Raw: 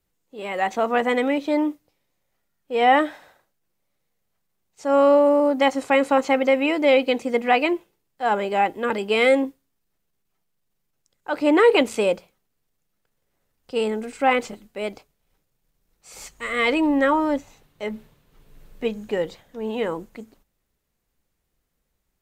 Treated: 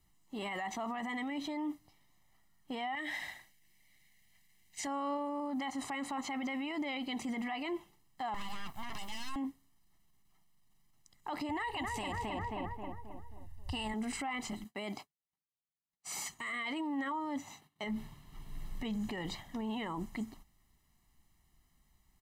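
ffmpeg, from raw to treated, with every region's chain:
-filter_complex "[0:a]asettb=1/sr,asplit=3[s0][s1][s2];[s0]atrim=end=2.954[s3];[s1]atrim=start=2.95:end=4.87,asetpts=PTS-STARTPTS,afade=t=in:d=0.004:c=qsin,afade=t=out:st=1.916:d=0.004:c=qsin,highshelf=f=1600:t=q:w=3:g=6.5,acompressor=threshold=0.0562:ratio=10:attack=3.2:release=140:knee=1:detection=peak[s4];[s2]atrim=start=4.866[s5];[s3][s4]acrossfade=d=0.004:c1=hsin:c2=qsin[s6];[s6][s5]acrossfade=d=0.004:c1=qsin:c2=hsin,asettb=1/sr,asplit=3[s7][s8][s9];[s7]atrim=end=8.344[s10];[s8]atrim=start=8.34:end=9.36,asetpts=PTS-STARTPTS,afade=t=in:d=0.004:c=qsin,afade=t=out:st=1.016:d=0.004:c=qsin,highpass=f=550:p=1,highshelf=f=4300:g=8,aeval=exprs='abs(val(0))':c=same[s11];[s9]atrim=start=9.356[s12];[s10][s11]acrossfade=d=0.004:c1=hsin:c2=qsin[s13];[s13][s12]acrossfade=d=0.004:c1=qsin:c2=hsin,asettb=1/sr,asplit=3[s14][s15][s16];[s14]atrim=end=11.494[s17];[s15]atrim=start=11.49:end=13.94,asetpts=PTS-STARTPTS,afade=t=in:d=0.004:c=qsin,afade=t=out:st=2.446:d=0.004:c=qsin,lowshelf=f=130:t=q:w=3:g=14,aecho=1:1:1.1:0.54,atrim=end_sample=108045,asplit=2[s18][s19];[s19]adelay=267,lowpass=f=1800:p=1,volume=0.501,asplit=2[s20][s21];[s21]adelay=267,lowpass=f=1800:p=1,volume=0.49,asplit=2[s22][s23];[s23]adelay=267,lowpass=f=1800:p=1,volume=0.49,asplit=2[s24][s25];[s25]adelay=267,lowpass=f=1800:p=1,volume=0.49,asplit=2[s26][s27];[s27]adelay=267,lowpass=f=1800:p=1,volume=0.49,asplit=2[s28][s29];[s29]adelay=267,lowpass=f=1800:p=1,volume=0.49[s30];[s18][s20][s22][s24][s26][s28][s30]amix=inputs=7:normalize=0,atrim=end_sample=108045[s31];[s16]atrim=start=13.936[s32];[s17][s31]acrossfade=d=0.004:c1=hsin:c2=qsin[s33];[s33][s32]acrossfade=d=0.004:c1=qsin:c2=hsin,asettb=1/sr,asplit=3[s34][s35][s36];[s34]atrim=end=14.644[s37];[s35]atrim=start=14.64:end=17.84,asetpts=PTS-STARTPTS,afade=t=in:d=0.004:c=qsin,afade=t=out:st=3.196:d=0.004:c=qsin,bandreject=f=5400:w=15,agate=range=0.0224:threshold=0.00282:ratio=3:release=100:detection=peak,highpass=160[s38];[s36]atrim=start=17.836[s39];[s37][s38]acrossfade=d=0.004:c1=hsin:c2=qsin[s40];[s40][s39]acrossfade=d=0.004:c1=qsin:c2=hsin,aecho=1:1:1:0.86,acompressor=threshold=0.0398:ratio=5,alimiter=level_in=2.37:limit=0.0631:level=0:latency=1:release=21,volume=0.422,volume=1.12"

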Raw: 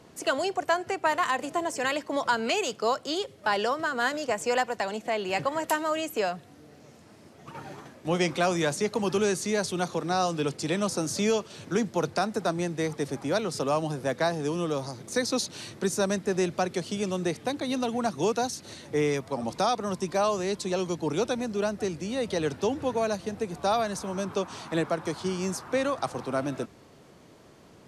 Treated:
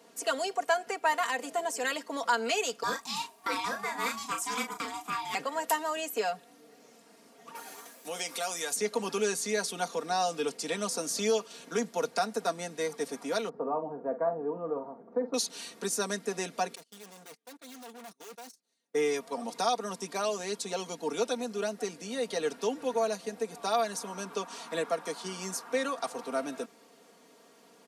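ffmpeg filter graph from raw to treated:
-filter_complex "[0:a]asettb=1/sr,asplit=3[s0][s1][s2];[s0]atrim=end=2.834[s3];[s1]atrim=start=2.83:end=5.35,asetpts=PTS-STARTPTS,afade=t=in:d=0.004:c=qsin,afade=t=out:st=2.516:d=0.004:c=qsin,aeval=exprs='val(0)*sin(2*PI*520*n/s)':c=same,highshelf=f=10000:g=11.5,asplit=2[s4][s5];[s5]adelay=35,volume=0.473[s6];[s4][s6]amix=inputs=2:normalize=0,atrim=end_sample=111132[s7];[s2]atrim=start=5.346[s8];[s3][s7]acrossfade=d=0.004:c1=hsin:c2=qsin[s9];[s9][s8]acrossfade=d=0.004:c1=qsin:c2=hsin,asettb=1/sr,asplit=3[s10][s11][s12];[s10]atrim=end=7.554[s13];[s11]atrim=start=7.55:end=8.76,asetpts=PTS-STARTPTS,afade=t=in:d=0.004:c=qsin,afade=t=out:st=1.206:d=0.004:c=qsin,aemphasis=mode=production:type=bsi,acompressor=threshold=0.0251:ratio=2:attack=3.2:release=140:knee=1:detection=peak[s14];[s12]atrim=start=8.756[s15];[s13][s14]acrossfade=d=0.004:c1=hsin:c2=qsin[s16];[s16][s15]acrossfade=d=0.004:c1=qsin:c2=hsin,asettb=1/sr,asplit=3[s17][s18][s19];[s17]atrim=end=13.494[s20];[s18]atrim=start=13.49:end=15.34,asetpts=PTS-STARTPTS,afade=t=in:d=0.004:c=qsin,afade=t=out:st=1.846:d=0.004:c=qsin,lowpass=f=1100:w=0.5412,lowpass=f=1100:w=1.3066,asplit=2[s21][s22];[s22]adelay=48,volume=0.282[s23];[s21][s23]amix=inputs=2:normalize=0,atrim=end_sample=81585[s24];[s19]atrim=start=15.336[s25];[s20][s24]acrossfade=d=0.004:c1=hsin:c2=qsin[s26];[s26][s25]acrossfade=d=0.004:c1=qsin:c2=hsin,asettb=1/sr,asplit=3[s27][s28][s29];[s27]atrim=end=16.754[s30];[s28]atrim=start=16.75:end=18.95,asetpts=PTS-STARTPTS,afade=t=in:d=0.004:c=qsin,afade=t=out:st=2.196:d=0.004:c=qsin,agate=range=0.0224:threshold=0.0251:ratio=16:release=100:detection=peak,highshelf=f=6100:g=3.5,aeval=exprs='(tanh(141*val(0)+0.45)-tanh(0.45))/141':c=same[s31];[s29]atrim=start=18.946[s32];[s30][s31]acrossfade=d=0.004:c1=hsin:c2=qsin[s33];[s33][s32]acrossfade=d=0.004:c1=qsin:c2=hsin,highpass=300,highshelf=f=8200:g=9,aecho=1:1:4.3:0.75,volume=0.562"

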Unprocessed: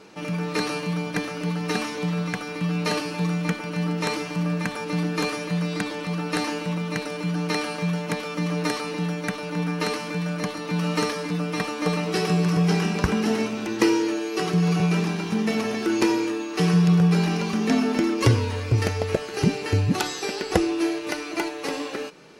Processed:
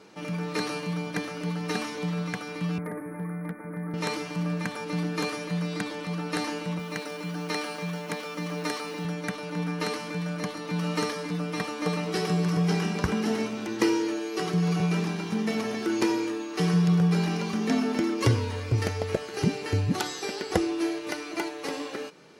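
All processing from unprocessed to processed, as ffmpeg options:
-filter_complex "[0:a]asettb=1/sr,asplit=3[s0][s1][s2];[s0]atrim=end=2.784[s3];[s1]atrim=start=2.78:end=3.94,asetpts=PTS-STARTPTS,afade=t=in:d=0.004:c=qsin,afade=t=out:st=1.156:d=0.004:c=qsin,asuperstop=centerf=4700:order=20:qfactor=0.65,acrossover=split=160|570|1700[s4][s5][s6][s7];[s4]acompressor=threshold=0.01:ratio=3[s8];[s5]acompressor=threshold=0.0282:ratio=3[s9];[s6]acompressor=threshold=0.00562:ratio=3[s10];[s7]acompressor=threshold=0.00631:ratio=3[s11];[s8][s9][s10][s11]amix=inputs=4:normalize=0,volume=12.6,asoftclip=hard,volume=0.0794[s12];[s2]atrim=start=3.936[s13];[s3][s12]acrossfade=d=0.004:c1=hsin:c2=qsin[s14];[s14][s13]acrossfade=d=0.004:c1=qsin:c2=hsin,asettb=1/sr,asplit=3[s15][s16][s17];[s15]atrim=end=6.794[s18];[s16]atrim=start=6.79:end=9.05,asetpts=PTS-STARTPTS,afade=t=in:d=0.004:c=qsin,afade=t=out:st=2.256:d=0.004:c=qsin,highpass=f=230:p=1,acrusher=bits=7:mix=0:aa=0.5[s19];[s17]atrim=start=9.046[s20];[s18][s19]acrossfade=d=0.004:c1=hsin:c2=qsin[s21];[s21][s20]acrossfade=d=0.004:c1=qsin:c2=hsin,highpass=55,bandreject=f=2600:w=18,volume=0.631"

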